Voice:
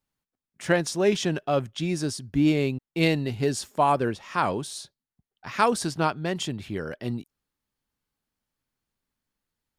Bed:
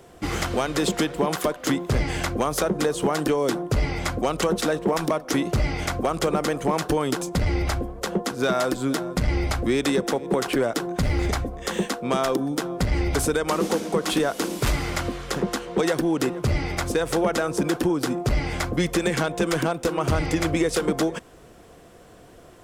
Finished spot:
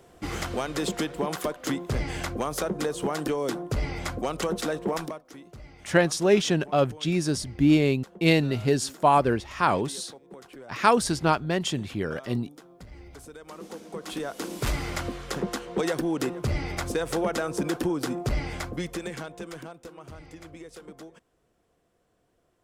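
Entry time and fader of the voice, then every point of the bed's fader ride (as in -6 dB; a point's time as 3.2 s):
5.25 s, +2.0 dB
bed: 4.99 s -5.5 dB
5.3 s -23 dB
13.26 s -23 dB
14.68 s -4.5 dB
18.35 s -4.5 dB
20.1 s -22 dB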